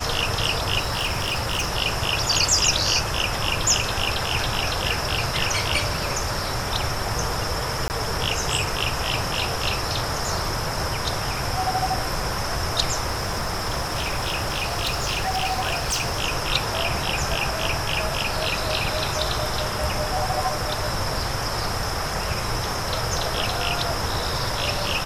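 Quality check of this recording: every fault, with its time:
0.79–1.69 s: clipped -20 dBFS
7.88–7.90 s: dropout 19 ms
13.06–16.21 s: clipped -20 dBFS

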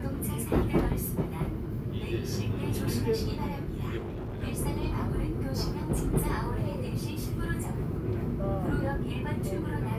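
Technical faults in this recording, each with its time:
3.97–4.44 s: clipped -33.5 dBFS

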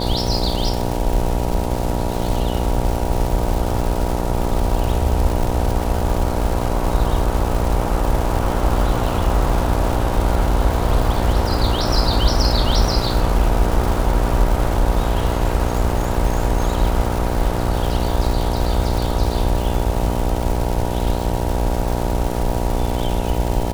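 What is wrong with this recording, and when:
buzz 60 Hz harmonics 16 -23 dBFS
crackle 380 per s -23 dBFS

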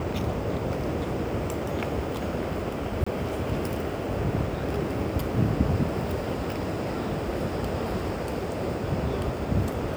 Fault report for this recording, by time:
3.04–3.06 s: dropout 25 ms

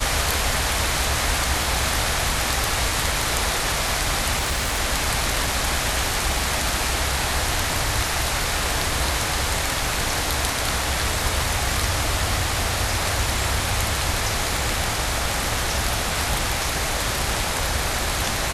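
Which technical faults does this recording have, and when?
4.37–4.80 s: clipped -19 dBFS

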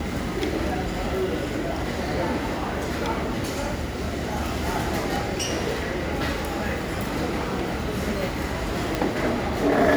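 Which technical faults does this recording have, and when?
8.95 s: pop

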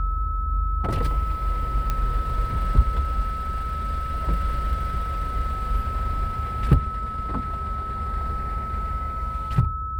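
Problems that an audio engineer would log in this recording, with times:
whine 1.3 kHz -29 dBFS
1.90 s: pop -12 dBFS

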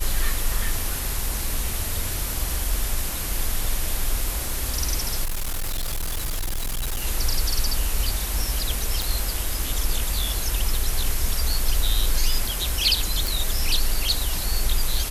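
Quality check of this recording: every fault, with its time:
5.24–7.05 s: clipped -22.5 dBFS
9.02 s: pop
13.27 s: pop

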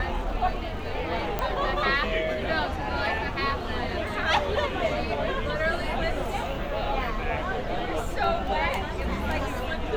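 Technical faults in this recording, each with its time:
1.39 s: pop -13 dBFS

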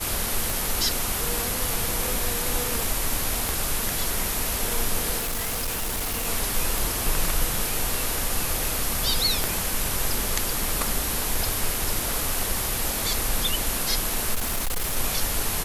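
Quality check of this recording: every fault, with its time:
0.50 s: pop
3.49 s: pop
5.18–6.28 s: clipped -24 dBFS
6.78 s: pop
9.44 s: pop -8 dBFS
14.34–14.97 s: clipped -22 dBFS

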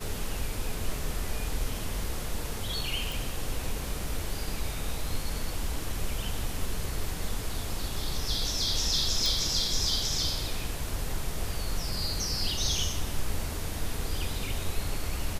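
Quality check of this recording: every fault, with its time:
3.12 s: pop
9.26 s: pop

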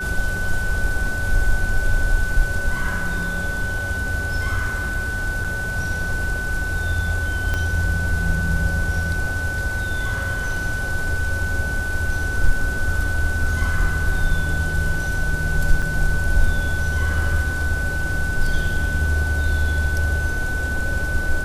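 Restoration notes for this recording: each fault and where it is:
whine 1.5 kHz -25 dBFS
5.44–5.45 s: dropout 6.3 ms
7.54 s: pop -11 dBFS
15.82–15.83 s: dropout 5.3 ms

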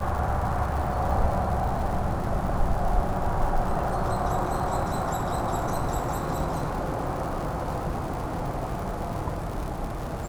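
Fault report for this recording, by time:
crackle 150 per s -33 dBFS

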